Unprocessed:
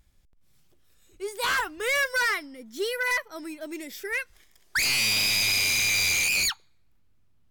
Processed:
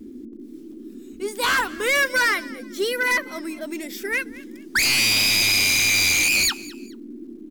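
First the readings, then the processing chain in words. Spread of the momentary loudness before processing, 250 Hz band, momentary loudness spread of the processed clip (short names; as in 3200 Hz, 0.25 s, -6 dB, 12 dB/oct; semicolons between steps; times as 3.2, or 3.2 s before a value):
17 LU, +9.5 dB, 17 LU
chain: frequency-shifting echo 0.213 s, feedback 31%, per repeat +44 Hz, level -20 dB; bit-crush 12-bit; band noise 220–360 Hz -44 dBFS; gain +5 dB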